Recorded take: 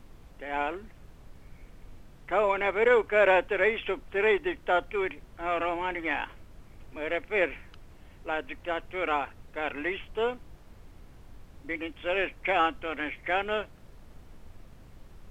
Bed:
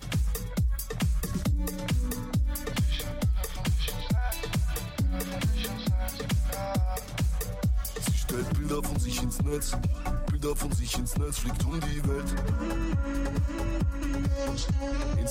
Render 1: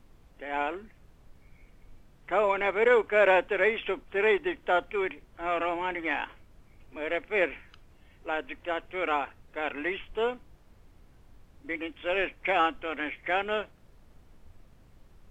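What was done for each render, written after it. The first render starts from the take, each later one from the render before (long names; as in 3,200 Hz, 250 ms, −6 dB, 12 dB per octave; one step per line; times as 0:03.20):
noise reduction from a noise print 6 dB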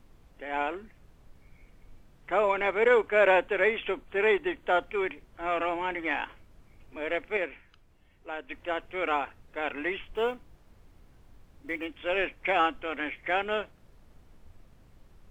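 0:03.08–0:04.69: notch filter 5,300 Hz, Q 5.3
0:07.37–0:08.50: clip gain −6 dB
0:10.13–0:11.89: one scale factor per block 7 bits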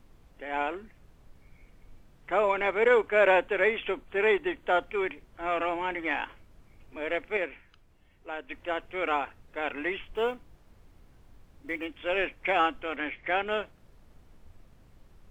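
0:12.96–0:13.47: low-pass filter 5,200 Hz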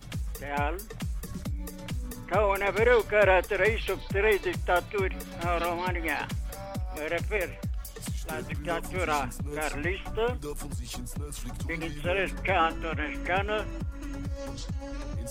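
mix in bed −7 dB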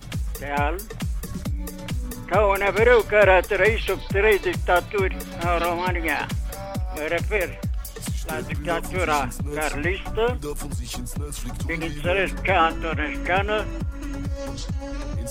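level +6 dB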